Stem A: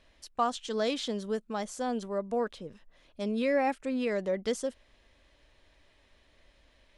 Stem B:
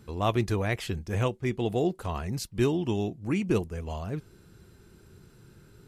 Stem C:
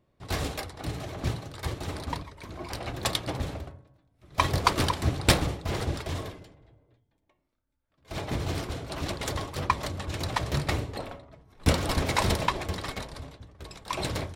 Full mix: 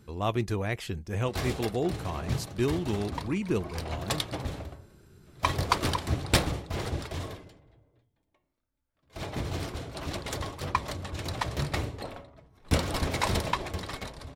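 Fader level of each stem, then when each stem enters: off, -2.5 dB, -2.5 dB; off, 0.00 s, 1.05 s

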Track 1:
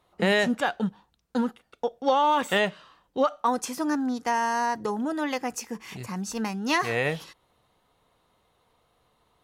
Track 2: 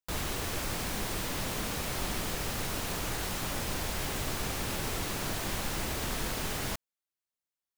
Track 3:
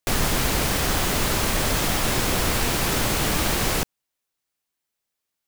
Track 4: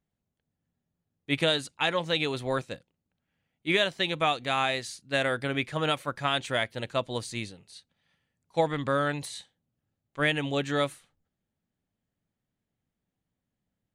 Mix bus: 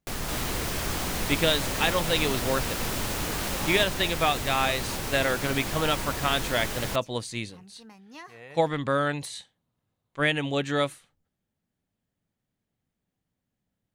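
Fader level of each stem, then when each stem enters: -20.0, +1.5, -10.5, +1.5 dB; 1.45, 0.20, 0.00, 0.00 s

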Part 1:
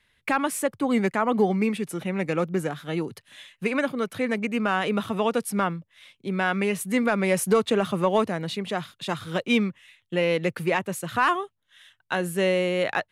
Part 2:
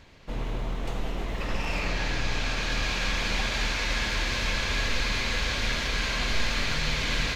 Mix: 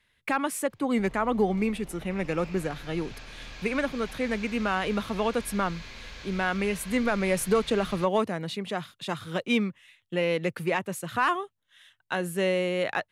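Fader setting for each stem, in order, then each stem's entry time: -3.0, -15.5 dB; 0.00, 0.70 s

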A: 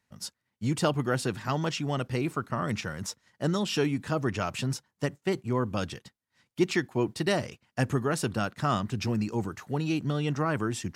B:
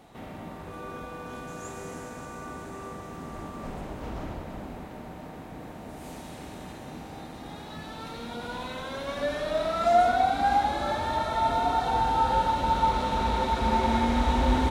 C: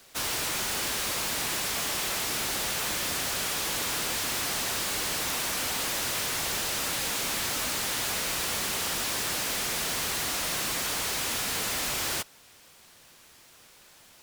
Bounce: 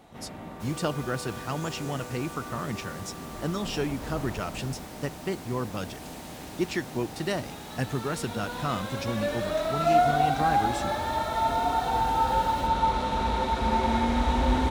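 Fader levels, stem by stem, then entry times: -3.0, -0.5, -19.0 dB; 0.00, 0.00, 0.45 s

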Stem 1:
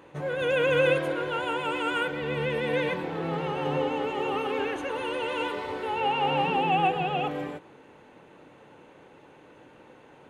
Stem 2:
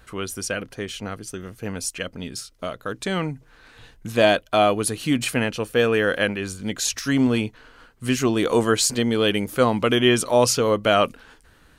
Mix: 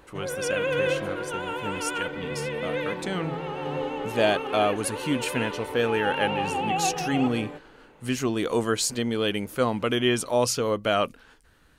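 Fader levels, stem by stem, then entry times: -2.5, -5.5 dB; 0.00, 0.00 s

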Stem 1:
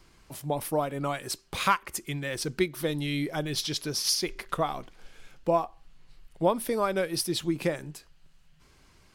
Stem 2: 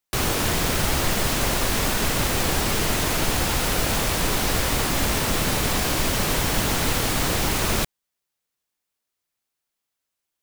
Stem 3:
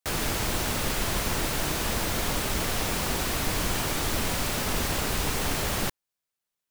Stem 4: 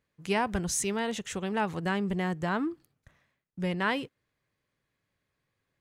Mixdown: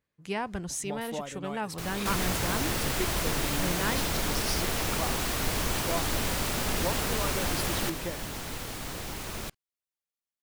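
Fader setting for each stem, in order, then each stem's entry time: -9.0, -14.5, -2.5, -4.5 dB; 0.40, 1.65, 2.00, 0.00 s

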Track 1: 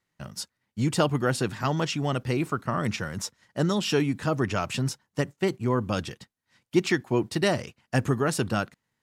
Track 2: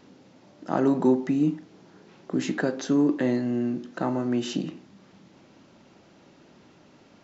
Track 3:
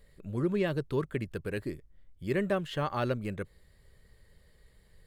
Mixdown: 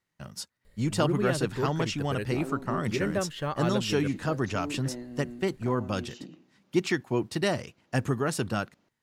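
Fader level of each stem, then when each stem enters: -3.0, -15.0, 0.0 dB; 0.00, 1.65, 0.65 s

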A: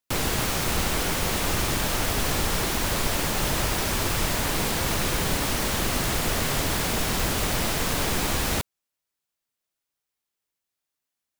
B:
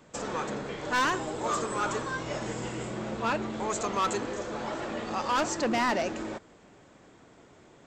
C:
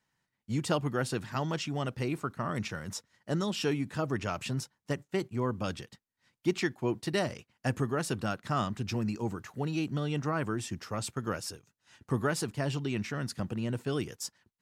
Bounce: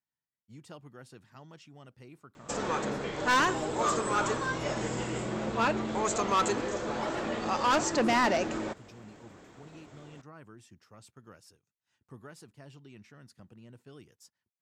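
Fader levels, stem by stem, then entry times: off, +1.5 dB, -19.0 dB; off, 2.35 s, 0.00 s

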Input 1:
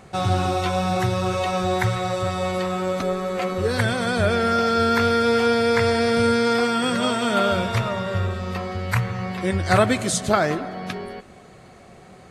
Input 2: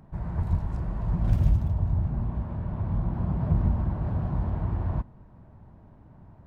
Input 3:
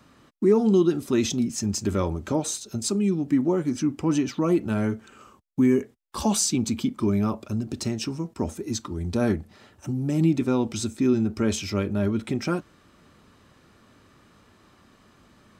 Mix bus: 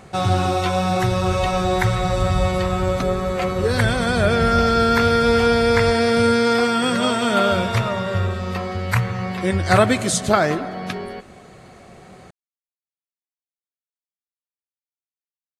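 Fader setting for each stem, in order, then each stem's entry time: +2.5 dB, -0.5 dB, off; 0.00 s, 0.90 s, off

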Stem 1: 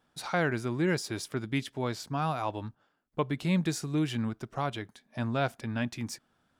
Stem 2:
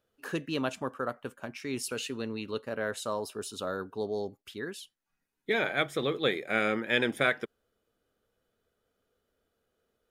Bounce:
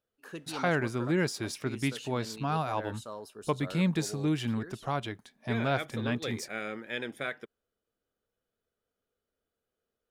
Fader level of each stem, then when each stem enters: 0.0, -9.0 dB; 0.30, 0.00 s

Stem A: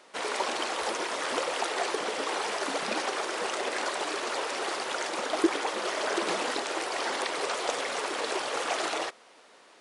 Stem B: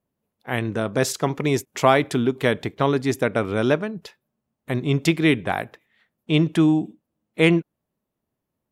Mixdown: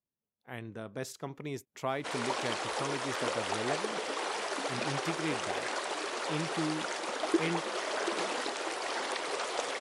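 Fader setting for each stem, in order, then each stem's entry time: -4.0, -17.5 dB; 1.90, 0.00 s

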